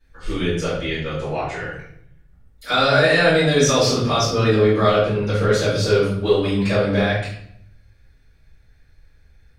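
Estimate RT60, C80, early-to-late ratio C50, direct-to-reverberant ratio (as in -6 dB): 0.65 s, 6.0 dB, 2.0 dB, -13.0 dB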